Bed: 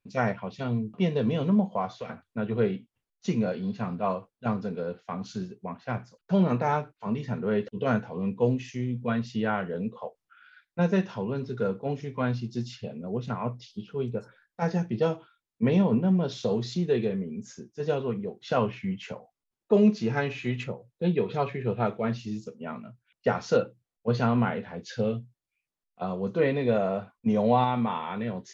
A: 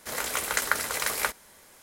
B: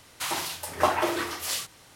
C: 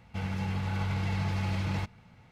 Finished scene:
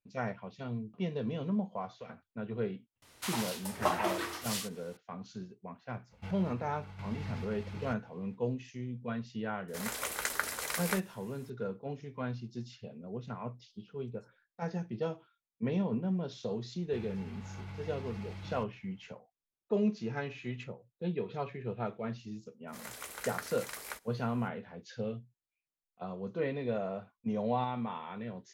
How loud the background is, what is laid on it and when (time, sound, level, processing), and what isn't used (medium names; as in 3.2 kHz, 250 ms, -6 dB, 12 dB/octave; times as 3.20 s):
bed -9.5 dB
3.02 s: add B -7 dB
6.08 s: add C -7.5 dB, fades 0.05 s + random-step tremolo 4.4 Hz, depth 75%
9.68 s: add A -7.5 dB
16.78 s: add C -13.5 dB
22.67 s: add A -15 dB, fades 0.02 s